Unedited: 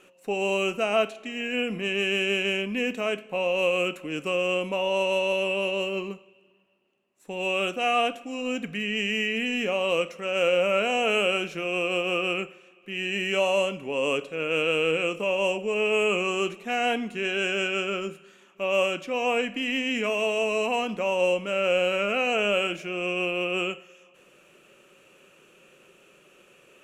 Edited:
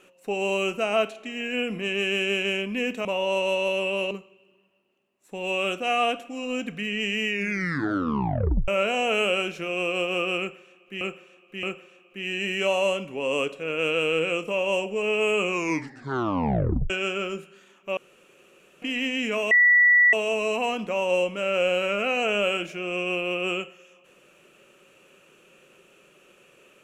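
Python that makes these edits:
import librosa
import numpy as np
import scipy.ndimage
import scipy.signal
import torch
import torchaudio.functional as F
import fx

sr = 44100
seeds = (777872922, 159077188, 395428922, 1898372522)

y = fx.edit(x, sr, fx.cut(start_s=3.05, length_s=1.64),
    fx.cut(start_s=5.75, length_s=0.32),
    fx.tape_stop(start_s=9.24, length_s=1.4),
    fx.repeat(start_s=12.35, length_s=0.62, count=3),
    fx.tape_stop(start_s=16.21, length_s=1.41),
    fx.room_tone_fill(start_s=18.69, length_s=0.85),
    fx.insert_tone(at_s=20.23, length_s=0.62, hz=1950.0, db=-13.5), tone=tone)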